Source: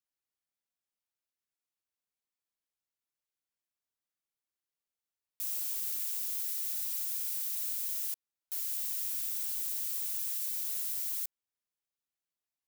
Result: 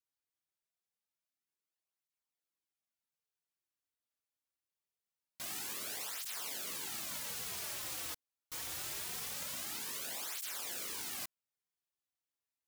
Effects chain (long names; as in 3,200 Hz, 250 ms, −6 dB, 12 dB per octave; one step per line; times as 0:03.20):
stylus tracing distortion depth 0.13 ms
through-zero flanger with one copy inverted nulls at 0.24 Hz, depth 5.7 ms